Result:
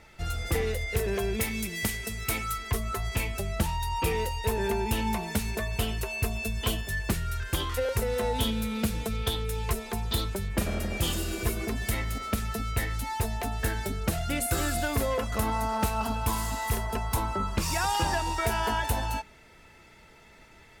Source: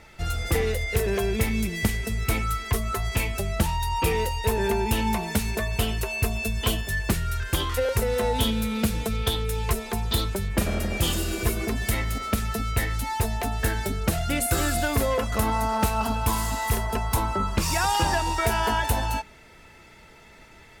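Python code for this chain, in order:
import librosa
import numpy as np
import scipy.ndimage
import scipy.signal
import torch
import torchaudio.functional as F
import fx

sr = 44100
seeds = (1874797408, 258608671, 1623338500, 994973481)

y = fx.tilt_eq(x, sr, slope=1.5, at=(1.4, 2.58))
y = y * 10.0 ** (-4.0 / 20.0)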